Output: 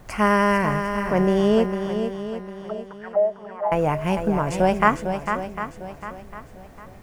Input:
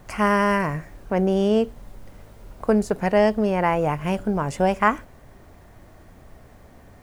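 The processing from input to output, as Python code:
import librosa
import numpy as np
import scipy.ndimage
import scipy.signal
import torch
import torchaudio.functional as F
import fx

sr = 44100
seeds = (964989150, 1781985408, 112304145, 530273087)

y = fx.auto_wah(x, sr, base_hz=610.0, top_hz=4400.0, q=8.9, full_db=-14.5, direction='down', at=(1.66, 3.72))
y = fx.echo_swing(y, sr, ms=752, ratio=1.5, feedback_pct=32, wet_db=-7.5)
y = y * 10.0 ** (1.0 / 20.0)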